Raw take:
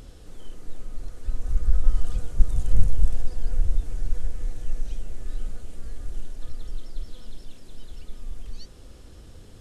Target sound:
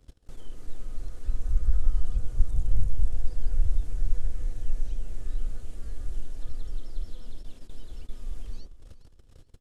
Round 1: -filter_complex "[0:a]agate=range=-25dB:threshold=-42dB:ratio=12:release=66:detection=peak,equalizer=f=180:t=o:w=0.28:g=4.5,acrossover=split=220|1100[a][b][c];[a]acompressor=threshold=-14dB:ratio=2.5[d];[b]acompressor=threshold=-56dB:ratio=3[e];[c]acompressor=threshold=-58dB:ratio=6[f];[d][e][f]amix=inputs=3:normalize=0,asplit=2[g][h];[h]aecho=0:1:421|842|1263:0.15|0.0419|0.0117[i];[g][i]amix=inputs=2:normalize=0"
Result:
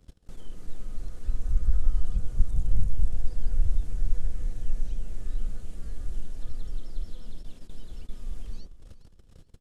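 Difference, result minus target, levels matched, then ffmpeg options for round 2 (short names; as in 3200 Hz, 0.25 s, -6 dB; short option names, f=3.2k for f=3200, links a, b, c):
250 Hz band +3.0 dB
-filter_complex "[0:a]agate=range=-25dB:threshold=-42dB:ratio=12:release=66:detection=peak,equalizer=f=180:t=o:w=0.28:g=-6.5,acrossover=split=220|1100[a][b][c];[a]acompressor=threshold=-14dB:ratio=2.5[d];[b]acompressor=threshold=-56dB:ratio=3[e];[c]acompressor=threshold=-58dB:ratio=6[f];[d][e][f]amix=inputs=3:normalize=0,asplit=2[g][h];[h]aecho=0:1:421|842|1263:0.15|0.0419|0.0117[i];[g][i]amix=inputs=2:normalize=0"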